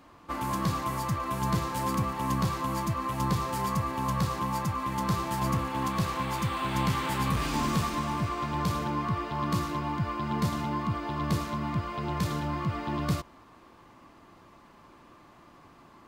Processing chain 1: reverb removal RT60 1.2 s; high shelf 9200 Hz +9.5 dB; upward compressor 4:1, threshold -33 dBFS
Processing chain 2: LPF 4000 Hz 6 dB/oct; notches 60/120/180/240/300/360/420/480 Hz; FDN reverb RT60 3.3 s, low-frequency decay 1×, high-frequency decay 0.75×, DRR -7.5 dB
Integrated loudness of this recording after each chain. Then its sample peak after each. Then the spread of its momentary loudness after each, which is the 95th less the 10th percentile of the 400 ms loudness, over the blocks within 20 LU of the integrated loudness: -32.5, -22.5 LUFS; -16.0, -8.5 dBFS; 12, 4 LU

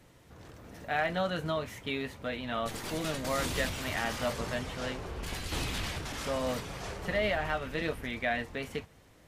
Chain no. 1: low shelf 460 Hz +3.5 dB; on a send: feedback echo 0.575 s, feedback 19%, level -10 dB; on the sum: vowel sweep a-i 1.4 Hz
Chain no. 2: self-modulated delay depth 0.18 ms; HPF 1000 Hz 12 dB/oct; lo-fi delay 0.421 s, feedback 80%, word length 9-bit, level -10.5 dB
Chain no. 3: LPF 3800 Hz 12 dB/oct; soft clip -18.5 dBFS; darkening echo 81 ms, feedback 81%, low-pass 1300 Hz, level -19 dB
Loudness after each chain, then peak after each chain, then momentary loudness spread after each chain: -43.5, -37.0, -34.5 LUFS; -25.5, -18.5, -20.5 dBFS; 10, 7, 8 LU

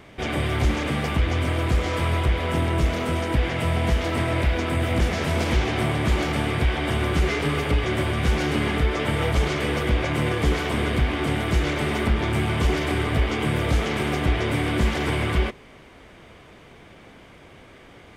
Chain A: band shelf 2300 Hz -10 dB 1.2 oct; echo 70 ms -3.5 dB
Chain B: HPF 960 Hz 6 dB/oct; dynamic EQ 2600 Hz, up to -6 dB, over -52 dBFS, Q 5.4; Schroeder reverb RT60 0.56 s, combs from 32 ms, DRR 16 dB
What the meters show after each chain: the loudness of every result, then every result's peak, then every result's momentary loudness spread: -23.0, -30.0 LUFS; -9.5, -17.5 dBFS; 2, 2 LU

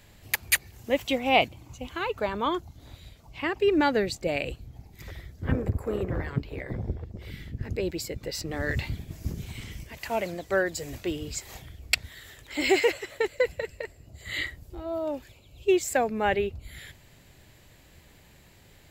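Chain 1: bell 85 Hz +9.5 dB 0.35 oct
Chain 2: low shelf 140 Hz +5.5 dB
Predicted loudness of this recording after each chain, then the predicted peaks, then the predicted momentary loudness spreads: -28.5, -28.5 LUFS; -5.5, -5.0 dBFS; 17, 17 LU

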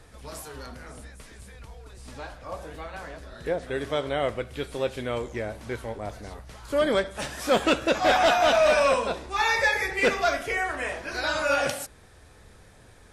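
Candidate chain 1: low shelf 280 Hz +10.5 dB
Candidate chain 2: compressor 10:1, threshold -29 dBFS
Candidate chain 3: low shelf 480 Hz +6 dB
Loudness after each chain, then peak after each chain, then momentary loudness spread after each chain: -23.5, -34.5, -23.5 LUFS; -8.5, -19.5, -10.0 dBFS; 19, 15, 21 LU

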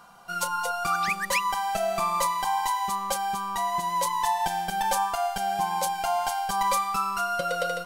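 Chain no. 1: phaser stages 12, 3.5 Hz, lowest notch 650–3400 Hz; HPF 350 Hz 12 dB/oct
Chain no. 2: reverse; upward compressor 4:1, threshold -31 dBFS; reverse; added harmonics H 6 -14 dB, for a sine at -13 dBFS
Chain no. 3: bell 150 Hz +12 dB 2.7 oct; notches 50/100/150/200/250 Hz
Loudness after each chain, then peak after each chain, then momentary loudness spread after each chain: -30.5, -25.5, -25.0 LUFS; -14.0, -12.0, -11.0 dBFS; 4, 3, 3 LU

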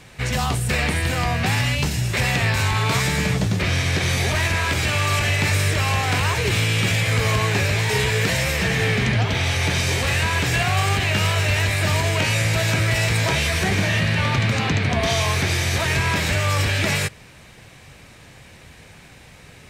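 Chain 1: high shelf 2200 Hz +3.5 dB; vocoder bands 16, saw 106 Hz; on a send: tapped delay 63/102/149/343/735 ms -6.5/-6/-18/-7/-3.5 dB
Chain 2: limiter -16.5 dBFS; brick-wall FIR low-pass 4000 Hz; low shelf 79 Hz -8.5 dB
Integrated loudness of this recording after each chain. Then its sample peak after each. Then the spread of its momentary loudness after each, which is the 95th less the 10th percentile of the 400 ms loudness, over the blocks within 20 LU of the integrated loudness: -19.0, -25.5 LUFS; -7.0, -15.5 dBFS; 8, 1 LU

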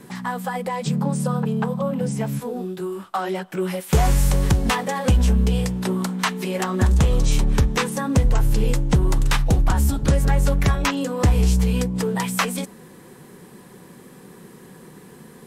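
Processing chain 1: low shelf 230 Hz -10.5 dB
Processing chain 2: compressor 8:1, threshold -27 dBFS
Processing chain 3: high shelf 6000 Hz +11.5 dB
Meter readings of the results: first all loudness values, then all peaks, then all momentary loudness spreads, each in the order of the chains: -26.5, -31.5, -21.0 LUFS; -8.5, -12.0, -4.0 dBFS; 6, 14, 8 LU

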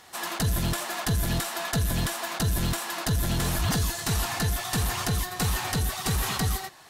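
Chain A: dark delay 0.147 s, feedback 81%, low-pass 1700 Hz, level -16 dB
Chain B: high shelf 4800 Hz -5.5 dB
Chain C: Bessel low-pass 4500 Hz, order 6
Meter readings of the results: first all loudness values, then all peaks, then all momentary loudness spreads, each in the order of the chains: -27.5, -28.5, -29.0 LUFS; -16.0, -17.5, -17.5 dBFS; 2, 3, 3 LU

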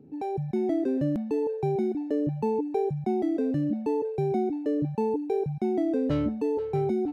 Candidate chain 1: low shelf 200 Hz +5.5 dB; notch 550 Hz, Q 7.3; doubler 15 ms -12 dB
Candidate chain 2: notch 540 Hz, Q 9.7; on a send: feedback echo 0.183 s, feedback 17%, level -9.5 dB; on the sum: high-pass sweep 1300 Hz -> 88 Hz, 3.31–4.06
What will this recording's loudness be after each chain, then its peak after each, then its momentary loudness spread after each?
-26.5, -26.5 LUFS; -14.0, -13.5 dBFS; 4, 20 LU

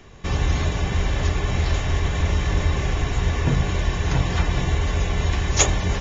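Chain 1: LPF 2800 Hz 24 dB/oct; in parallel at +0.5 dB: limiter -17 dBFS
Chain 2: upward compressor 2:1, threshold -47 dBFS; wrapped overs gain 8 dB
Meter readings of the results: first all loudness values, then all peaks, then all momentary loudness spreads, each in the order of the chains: -19.0, -23.0 LUFS; -5.0, -8.0 dBFS; 1, 4 LU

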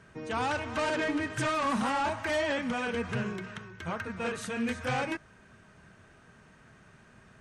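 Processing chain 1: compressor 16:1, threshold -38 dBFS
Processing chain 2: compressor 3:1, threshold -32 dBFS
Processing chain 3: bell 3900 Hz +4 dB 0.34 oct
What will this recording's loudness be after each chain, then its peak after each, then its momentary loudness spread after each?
-41.5, -35.0, -31.5 LUFS; -28.0, -25.0, -22.5 dBFS; 16, 6, 8 LU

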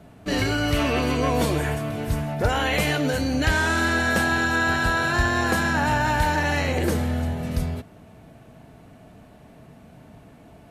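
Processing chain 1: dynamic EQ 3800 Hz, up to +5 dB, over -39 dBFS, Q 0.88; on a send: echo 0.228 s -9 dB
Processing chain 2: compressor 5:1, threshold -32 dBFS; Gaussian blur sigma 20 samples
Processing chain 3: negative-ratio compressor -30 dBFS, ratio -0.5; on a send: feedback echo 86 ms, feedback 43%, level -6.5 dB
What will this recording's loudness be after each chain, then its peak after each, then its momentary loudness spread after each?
-21.5, -39.5, -32.5 LUFS; -7.0, -23.5, -11.5 dBFS; 8, 14, 13 LU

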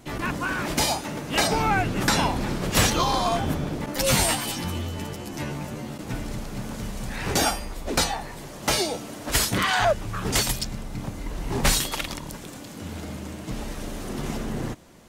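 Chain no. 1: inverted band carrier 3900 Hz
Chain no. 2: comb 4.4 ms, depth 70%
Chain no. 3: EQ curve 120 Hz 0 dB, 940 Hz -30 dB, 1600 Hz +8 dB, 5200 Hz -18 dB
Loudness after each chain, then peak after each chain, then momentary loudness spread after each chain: -23.5, -24.0, -29.5 LUFS; -6.5, -5.0, -9.0 dBFS; 11, 13, 15 LU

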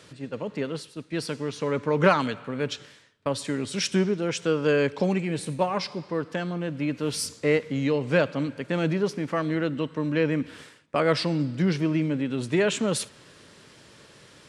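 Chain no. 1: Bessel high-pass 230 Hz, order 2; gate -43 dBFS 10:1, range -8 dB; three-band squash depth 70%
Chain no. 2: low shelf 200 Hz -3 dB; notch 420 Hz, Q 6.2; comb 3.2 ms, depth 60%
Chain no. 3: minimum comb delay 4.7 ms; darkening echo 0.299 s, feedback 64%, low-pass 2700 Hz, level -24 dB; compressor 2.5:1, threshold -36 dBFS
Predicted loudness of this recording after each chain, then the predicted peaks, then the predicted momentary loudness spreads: -28.0, -27.0, -37.0 LUFS; -11.0, -4.0, -22.0 dBFS; 8, 9, 10 LU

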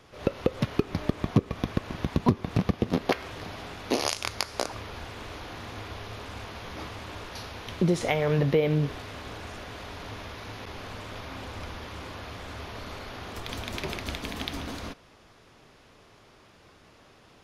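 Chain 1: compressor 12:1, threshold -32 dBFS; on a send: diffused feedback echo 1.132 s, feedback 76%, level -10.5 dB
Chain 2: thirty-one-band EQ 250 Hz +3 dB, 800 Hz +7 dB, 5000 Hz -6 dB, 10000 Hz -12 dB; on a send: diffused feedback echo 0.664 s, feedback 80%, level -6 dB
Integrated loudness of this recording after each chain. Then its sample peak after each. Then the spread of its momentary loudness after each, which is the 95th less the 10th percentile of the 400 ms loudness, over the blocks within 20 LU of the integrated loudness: -39.0, -29.0 LUFS; -15.0, -7.5 dBFS; 8, 13 LU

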